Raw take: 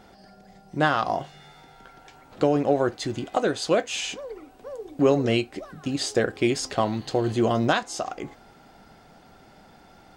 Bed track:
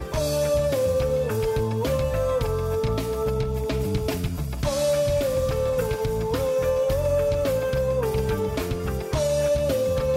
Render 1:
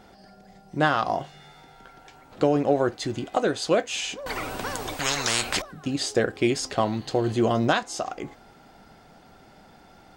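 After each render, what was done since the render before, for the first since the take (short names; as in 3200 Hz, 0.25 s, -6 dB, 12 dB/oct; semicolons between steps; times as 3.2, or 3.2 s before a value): 4.26–5.62 spectral compressor 10:1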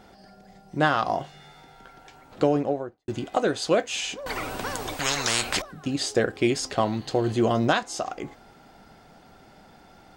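2.42–3.08 studio fade out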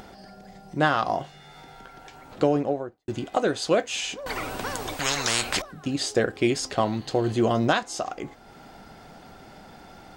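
upward compressor, threshold -39 dBFS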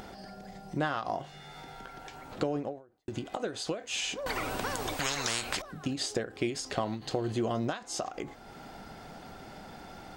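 compressor 3:1, threshold -30 dBFS, peak gain reduction 11 dB; ending taper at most 150 dB/s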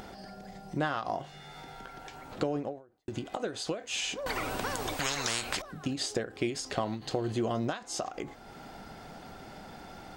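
nothing audible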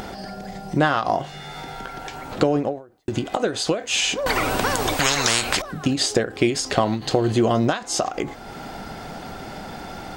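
gain +12 dB; limiter -2 dBFS, peak gain reduction 1 dB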